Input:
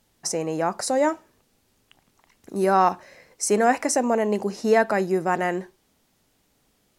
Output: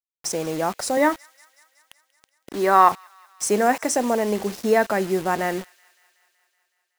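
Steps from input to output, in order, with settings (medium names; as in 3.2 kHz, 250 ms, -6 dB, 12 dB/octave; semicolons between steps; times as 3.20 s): 0.97–2.92 s: cabinet simulation 260–5100 Hz, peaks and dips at 280 Hz +7 dB, 1.1 kHz +9 dB, 1.9 kHz +10 dB, 3.5 kHz +8 dB; bit crusher 6-bit; feedback echo behind a high-pass 187 ms, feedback 69%, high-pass 2.2 kHz, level -21.5 dB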